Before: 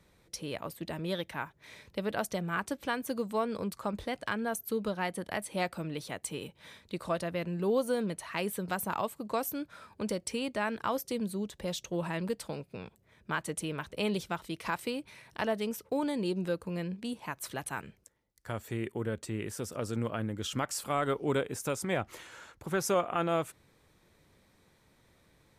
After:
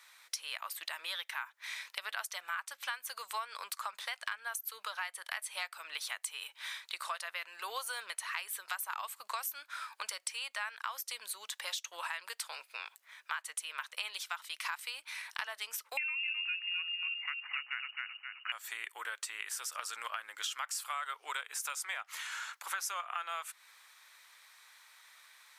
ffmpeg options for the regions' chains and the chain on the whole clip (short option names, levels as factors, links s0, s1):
-filter_complex "[0:a]asettb=1/sr,asplit=3[s0][s1][s2];[s0]atrim=end=15.974[s3];[s1]atrim=start=15.97:end=18.52,asetpts=PTS-STARTPTS,afade=t=in:d=0.004:c=qsin,afade=t=out:st=2.546:d=0.004:c=qsin,aecho=1:1:262|524|786:0.531|0.122|0.0281,atrim=end_sample=112455,lowpass=f=2600:t=q:w=0.5098,lowpass=f=2600:t=q:w=0.6013,lowpass=f=2600:t=q:w=0.9,lowpass=f=2600:t=q:w=2.563,afreqshift=-3000[s4];[s2]atrim=start=18.516[s5];[s3][s4]acrossfade=d=0.004:c1=hsin:c2=qsin[s6];[s6][s5]acrossfade=d=0.004:c1=qsin:c2=hsin,highpass=f=1100:w=0.5412,highpass=f=1100:w=1.3066,acompressor=threshold=0.00398:ratio=5,volume=3.76"